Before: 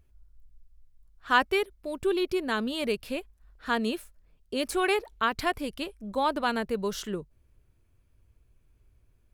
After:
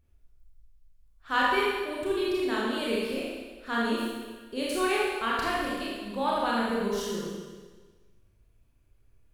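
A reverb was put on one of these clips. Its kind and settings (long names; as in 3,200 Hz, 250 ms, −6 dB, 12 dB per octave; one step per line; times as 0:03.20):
four-comb reverb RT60 1.4 s, combs from 27 ms, DRR −6 dB
level −6.5 dB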